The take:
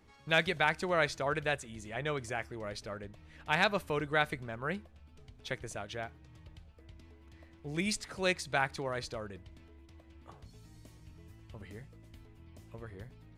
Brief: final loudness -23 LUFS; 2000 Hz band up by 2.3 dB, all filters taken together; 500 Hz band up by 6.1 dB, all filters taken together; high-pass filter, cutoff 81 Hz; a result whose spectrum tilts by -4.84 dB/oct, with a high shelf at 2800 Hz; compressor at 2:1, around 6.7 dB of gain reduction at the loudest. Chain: HPF 81 Hz; bell 500 Hz +7.5 dB; bell 2000 Hz +4 dB; high shelf 2800 Hz -4 dB; compressor 2:1, threshold -32 dBFS; gain +13 dB

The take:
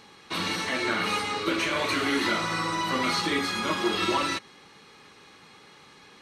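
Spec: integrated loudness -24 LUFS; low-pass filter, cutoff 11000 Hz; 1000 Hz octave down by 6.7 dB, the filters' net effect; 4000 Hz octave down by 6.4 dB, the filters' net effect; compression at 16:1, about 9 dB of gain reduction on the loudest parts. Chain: LPF 11000 Hz; bell 1000 Hz -8 dB; bell 4000 Hz -7.5 dB; compressor 16:1, threshold -32 dBFS; gain +12 dB

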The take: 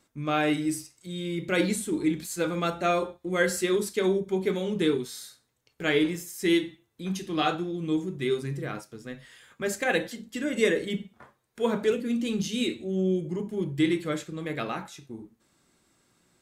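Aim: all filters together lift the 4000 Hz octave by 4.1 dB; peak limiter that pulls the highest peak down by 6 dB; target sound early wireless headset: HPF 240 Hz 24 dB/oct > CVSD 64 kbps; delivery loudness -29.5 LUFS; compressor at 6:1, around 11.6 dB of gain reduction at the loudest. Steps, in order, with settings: bell 4000 Hz +5 dB; compressor 6:1, threshold -31 dBFS; limiter -25.5 dBFS; HPF 240 Hz 24 dB/oct; CVSD 64 kbps; gain +8 dB

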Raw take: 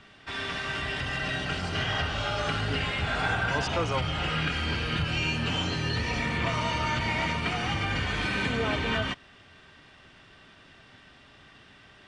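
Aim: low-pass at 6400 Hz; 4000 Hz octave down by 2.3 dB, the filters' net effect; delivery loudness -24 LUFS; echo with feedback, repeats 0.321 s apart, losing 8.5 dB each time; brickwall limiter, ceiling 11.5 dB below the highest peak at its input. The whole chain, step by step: LPF 6400 Hz; bell 4000 Hz -3 dB; limiter -26.5 dBFS; feedback echo 0.321 s, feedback 38%, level -8.5 dB; gain +10 dB

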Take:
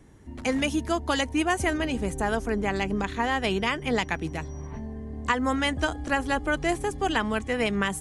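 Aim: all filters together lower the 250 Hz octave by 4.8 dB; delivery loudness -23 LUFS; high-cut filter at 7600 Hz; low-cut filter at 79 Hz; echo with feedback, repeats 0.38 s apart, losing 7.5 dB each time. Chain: HPF 79 Hz; LPF 7600 Hz; bell 250 Hz -6 dB; feedback echo 0.38 s, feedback 42%, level -7.5 dB; gain +5 dB

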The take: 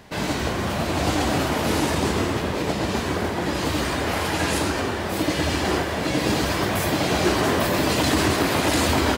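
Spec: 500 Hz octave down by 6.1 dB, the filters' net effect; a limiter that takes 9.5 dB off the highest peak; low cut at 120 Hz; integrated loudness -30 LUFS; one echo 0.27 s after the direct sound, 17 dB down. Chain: HPF 120 Hz; bell 500 Hz -8.5 dB; limiter -20 dBFS; echo 0.27 s -17 dB; gain -1.5 dB

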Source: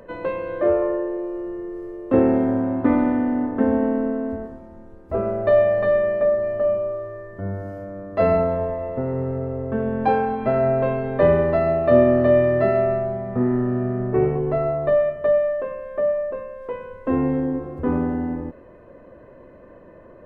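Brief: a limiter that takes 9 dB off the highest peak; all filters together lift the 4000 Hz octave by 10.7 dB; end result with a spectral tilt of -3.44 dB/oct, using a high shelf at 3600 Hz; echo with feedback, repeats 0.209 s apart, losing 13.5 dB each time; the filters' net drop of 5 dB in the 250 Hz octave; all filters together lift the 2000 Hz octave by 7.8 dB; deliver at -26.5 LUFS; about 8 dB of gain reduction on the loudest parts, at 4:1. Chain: bell 250 Hz -6 dB; bell 2000 Hz +6 dB; high shelf 3600 Hz +8.5 dB; bell 4000 Hz +6.5 dB; compressor 4:1, threshold -21 dBFS; limiter -19.5 dBFS; feedback echo 0.209 s, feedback 21%, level -13.5 dB; gain +2 dB

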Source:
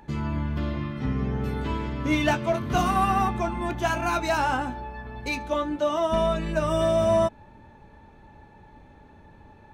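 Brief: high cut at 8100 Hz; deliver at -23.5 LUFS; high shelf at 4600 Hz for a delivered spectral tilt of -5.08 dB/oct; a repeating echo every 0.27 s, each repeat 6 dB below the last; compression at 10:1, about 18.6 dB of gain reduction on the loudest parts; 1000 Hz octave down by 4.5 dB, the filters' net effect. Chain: LPF 8100 Hz; bell 1000 Hz -6.5 dB; high shelf 4600 Hz +6 dB; compressor 10:1, threshold -39 dBFS; feedback echo 0.27 s, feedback 50%, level -6 dB; gain +19 dB

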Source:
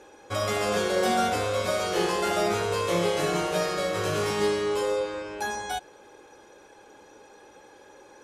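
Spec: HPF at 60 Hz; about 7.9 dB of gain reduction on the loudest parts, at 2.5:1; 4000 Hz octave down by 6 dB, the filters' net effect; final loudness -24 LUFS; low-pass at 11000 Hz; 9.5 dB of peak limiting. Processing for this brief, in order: HPF 60 Hz; LPF 11000 Hz; bell 4000 Hz -8 dB; compressor 2.5:1, threshold -33 dBFS; gain +15 dB; limiter -16 dBFS

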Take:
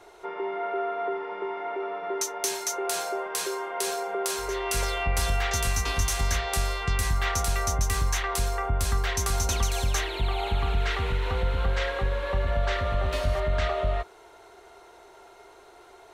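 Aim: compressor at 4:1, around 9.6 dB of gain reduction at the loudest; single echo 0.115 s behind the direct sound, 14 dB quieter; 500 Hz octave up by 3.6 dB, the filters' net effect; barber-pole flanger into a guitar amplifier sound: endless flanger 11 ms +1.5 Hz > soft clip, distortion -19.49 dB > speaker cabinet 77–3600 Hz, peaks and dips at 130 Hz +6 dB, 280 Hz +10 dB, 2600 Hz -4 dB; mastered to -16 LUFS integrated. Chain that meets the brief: bell 500 Hz +4 dB; compressor 4:1, threshold -32 dBFS; echo 0.115 s -14 dB; endless flanger 11 ms +1.5 Hz; soft clip -29.5 dBFS; speaker cabinet 77–3600 Hz, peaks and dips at 130 Hz +6 dB, 280 Hz +10 dB, 2600 Hz -4 dB; gain +24 dB

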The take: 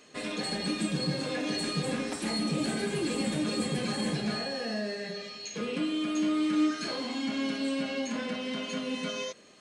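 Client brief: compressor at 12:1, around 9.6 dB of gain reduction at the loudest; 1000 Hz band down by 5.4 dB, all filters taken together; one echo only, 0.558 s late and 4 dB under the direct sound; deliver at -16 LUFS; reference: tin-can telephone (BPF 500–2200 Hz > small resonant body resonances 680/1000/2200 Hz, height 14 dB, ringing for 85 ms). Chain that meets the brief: bell 1000 Hz -6.5 dB; compressor 12:1, threshold -33 dBFS; BPF 500–2200 Hz; echo 0.558 s -4 dB; small resonant body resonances 680/1000/2200 Hz, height 14 dB, ringing for 85 ms; gain +25 dB

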